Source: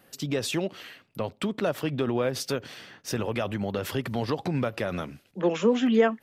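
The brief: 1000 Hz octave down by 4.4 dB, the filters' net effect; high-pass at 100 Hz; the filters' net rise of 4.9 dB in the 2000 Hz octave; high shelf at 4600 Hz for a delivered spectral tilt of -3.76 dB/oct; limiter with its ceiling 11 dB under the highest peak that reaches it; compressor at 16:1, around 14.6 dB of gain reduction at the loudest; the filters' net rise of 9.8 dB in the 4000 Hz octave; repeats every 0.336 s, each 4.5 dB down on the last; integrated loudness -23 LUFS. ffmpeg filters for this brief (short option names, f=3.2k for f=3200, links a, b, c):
-af "highpass=100,equalizer=f=1k:t=o:g=-9,equalizer=f=2k:t=o:g=5,equalizer=f=4k:t=o:g=8.5,highshelf=f=4.6k:g=6,acompressor=threshold=-31dB:ratio=16,alimiter=level_in=1.5dB:limit=-24dB:level=0:latency=1,volume=-1.5dB,aecho=1:1:336|672|1008|1344|1680|2016|2352|2688|3024:0.596|0.357|0.214|0.129|0.0772|0.0463|0.0278|0.0167|0.01,volume=12dB"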